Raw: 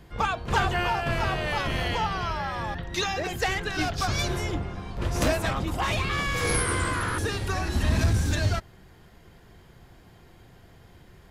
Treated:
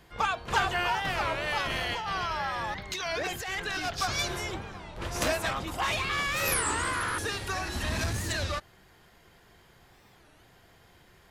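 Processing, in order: low shelf 420 Hz -10.5 dB; 1.7–3.85 negative-ratio compressor -32 dBFS, ratio -1; record warp 33 1/3 rpm, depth 250 cents

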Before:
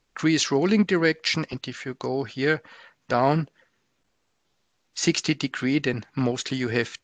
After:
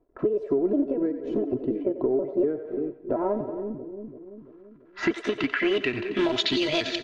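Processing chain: trilling pitch shifter +5.5 st, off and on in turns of 0.243 s; low shelf 92 Hz -6.5 dB; in parallel at -11.5 dB: wrapped overs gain 21.5 dB; on the sum: low-pass opened by the level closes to 2800 Hz, open at -20.5 dBFS; companded quantiser 6-bit; low-pass sweep 480 Hz -> 4100 Hz, 3.03–6.68; on a send: split-band echo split 410 Hz, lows 0.338 s, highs 90 ms, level -12 dB; on the sum: compressor 10:1, threshold -26 dBFS, peak gain reduction 15 dB; comb 3 ms, depth 62%; gain +3.5 dB

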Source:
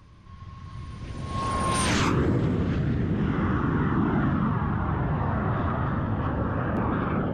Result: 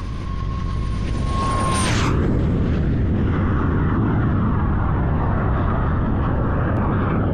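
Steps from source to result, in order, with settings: octaver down 1 oct, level +2 dB; fast leveller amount 70%

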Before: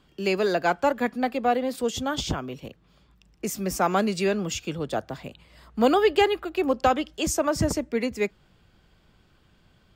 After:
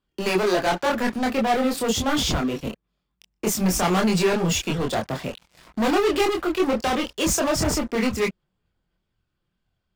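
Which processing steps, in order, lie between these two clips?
sample leveller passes 5; chorus voices 6, 0.96 Hz, delay 25 ms, depth 3 ms; gain -5.5 dB

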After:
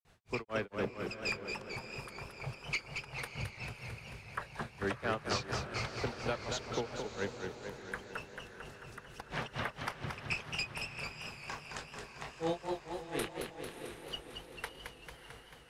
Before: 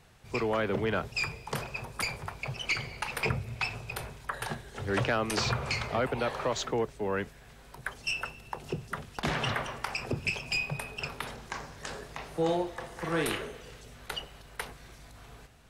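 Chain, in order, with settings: grains 0.215 s, grains 4.2/s, pitch spread up and down by 0 st; diffused feedback echo 0.642 s, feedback 49%, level -11.5 dB; warbling echo 0.222 s, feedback 66%, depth 156 cents, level -6 dB; gain -4 dB

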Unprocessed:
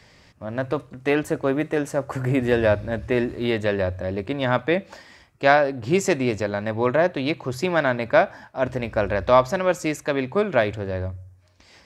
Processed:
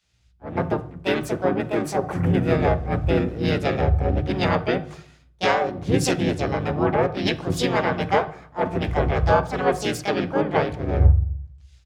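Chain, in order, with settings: harmoniser -5 st 0 dB, +5 st -1 dB; compressor 5:1, threshold -19 dBFS, peak gain reduction 12.5 dB; hum 60 Hz, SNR 31 dB; on a send at -11 dB: reverb RT60 1.1 s, pre-delay 3 ms; on the sum: three-band expander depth 100%

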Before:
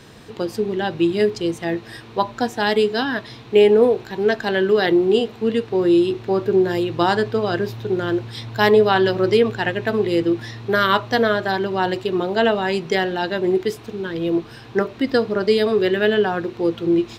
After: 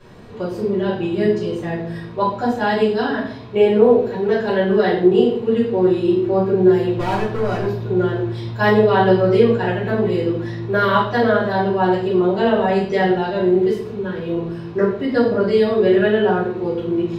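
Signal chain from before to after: high shelf 2600 Hz -11 dB; 6.96–7.86 overloaded stage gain 19 dB; reverb RT60 0.60 s, pre-delay 3 ms, DRR -12.5 dB; gain -10 dB

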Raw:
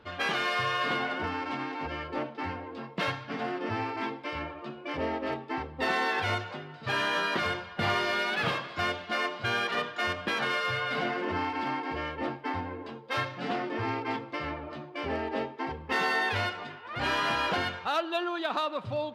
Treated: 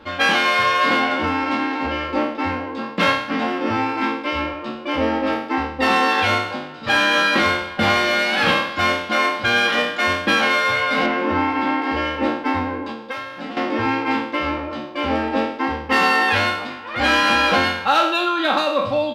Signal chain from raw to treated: spectral trails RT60 0.64 s; 11.06–11.82 LPF 3100 Hz 6 dB/oct; 12.91–13.57 compressor 16:1, threshold -38 dBFS, peak gain reduction 14 dB; comb 3.7 ms, depth 71%; gain +8.5 dB

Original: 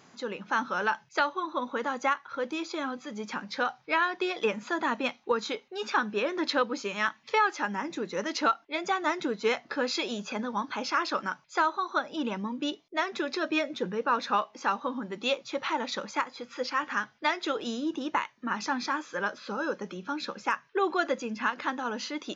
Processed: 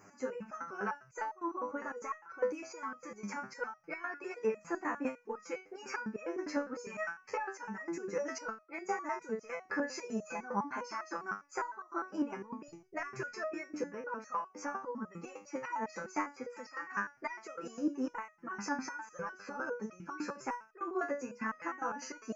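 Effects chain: 12.68–13.38 resonant low shelf 190 Hz +12.5 dB, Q 3; compressor, threshold -32 dBFS, peak gain reduction 11.5 dB; Butterworth band-stop 3600 Hz, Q 1; stepped resonator 9.9 Hz 100–630 Hz; gain +10.5 dB

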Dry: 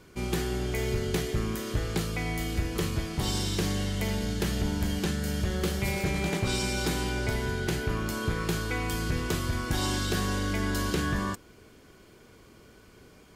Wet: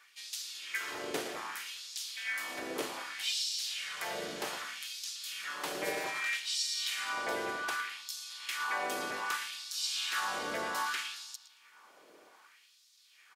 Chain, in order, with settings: darkening echo 0.113 s, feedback 49%, low-pass 4000 Hz, level -7.5 dB; LFO high-pass sine 0.64 Hz 570–5300 Hz; harmoniser -7 st -18 dB, -4 st -2 dB; gain -6 dB

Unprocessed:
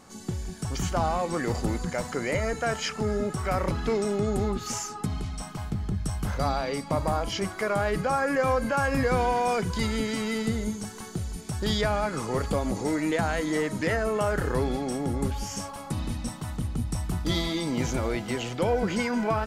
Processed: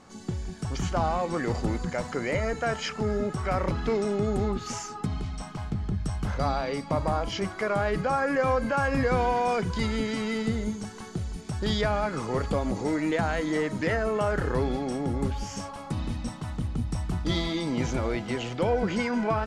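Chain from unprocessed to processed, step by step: air absorption 64 m

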